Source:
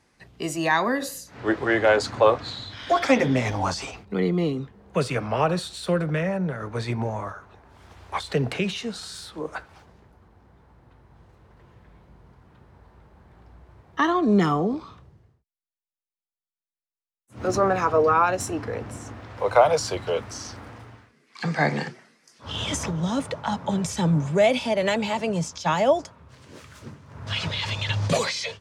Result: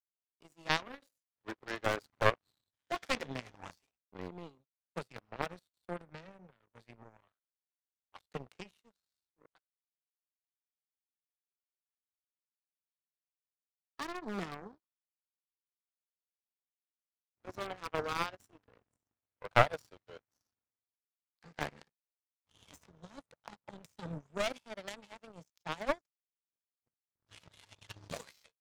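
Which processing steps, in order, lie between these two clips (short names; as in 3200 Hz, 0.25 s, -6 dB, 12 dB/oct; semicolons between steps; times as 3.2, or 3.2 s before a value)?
one-sided fold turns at -13.5 dBFS; power-law curve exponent 3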